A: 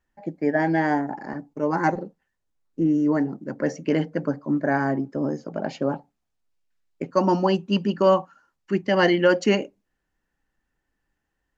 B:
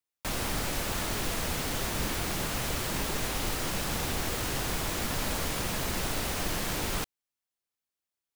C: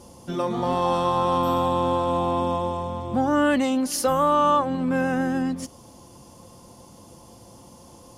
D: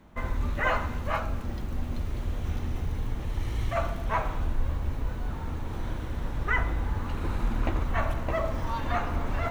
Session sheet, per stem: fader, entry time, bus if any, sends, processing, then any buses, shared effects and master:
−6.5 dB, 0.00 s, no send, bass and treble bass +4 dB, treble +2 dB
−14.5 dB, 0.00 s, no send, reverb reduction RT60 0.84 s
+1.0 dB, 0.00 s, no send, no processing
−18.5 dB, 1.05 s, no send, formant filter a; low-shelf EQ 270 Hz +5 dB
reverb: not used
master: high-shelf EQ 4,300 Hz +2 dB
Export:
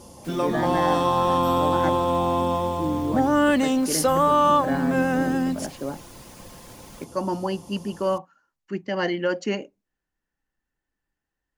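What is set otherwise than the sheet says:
stem A: missing bass and treble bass +4 dB, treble +2 dB
stem D: muted

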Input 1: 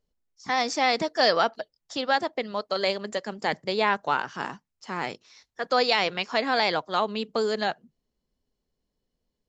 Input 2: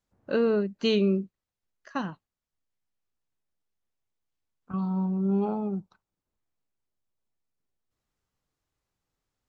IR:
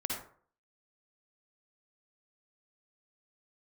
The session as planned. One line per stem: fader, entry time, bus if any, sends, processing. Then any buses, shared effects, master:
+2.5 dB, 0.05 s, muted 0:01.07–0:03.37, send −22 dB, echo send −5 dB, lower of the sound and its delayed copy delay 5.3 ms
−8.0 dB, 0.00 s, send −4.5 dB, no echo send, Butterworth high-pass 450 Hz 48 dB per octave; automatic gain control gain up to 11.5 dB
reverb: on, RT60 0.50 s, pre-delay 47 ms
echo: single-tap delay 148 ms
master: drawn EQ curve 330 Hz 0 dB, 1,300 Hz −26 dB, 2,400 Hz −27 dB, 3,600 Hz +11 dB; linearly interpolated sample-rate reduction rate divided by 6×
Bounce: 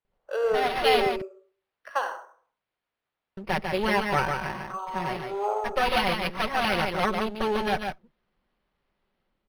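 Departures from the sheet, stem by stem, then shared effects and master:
stem 1: send off
master: missing drawn EQ curve 330 Hz 0 dB, 1,300 Hz −26 dB, 2,400 Hz −27 dB, 3,600 Hz +11 dB

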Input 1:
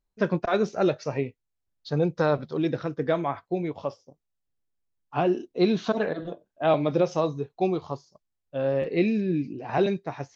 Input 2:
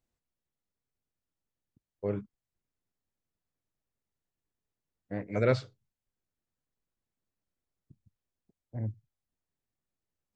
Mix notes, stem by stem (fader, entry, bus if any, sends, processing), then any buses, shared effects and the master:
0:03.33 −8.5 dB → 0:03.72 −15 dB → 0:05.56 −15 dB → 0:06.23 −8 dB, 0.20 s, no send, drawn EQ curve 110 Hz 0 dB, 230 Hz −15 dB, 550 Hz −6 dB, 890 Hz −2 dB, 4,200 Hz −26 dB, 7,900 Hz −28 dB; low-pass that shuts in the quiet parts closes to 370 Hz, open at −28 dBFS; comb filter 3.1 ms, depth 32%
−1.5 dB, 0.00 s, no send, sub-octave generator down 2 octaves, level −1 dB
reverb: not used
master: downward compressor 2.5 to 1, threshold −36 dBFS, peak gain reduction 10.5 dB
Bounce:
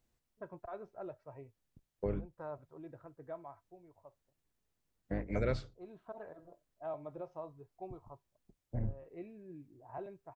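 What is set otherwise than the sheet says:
stem 1 −8.5 dB → −15.0 dB
stem 2 −1.5 dB → +4.5 dB

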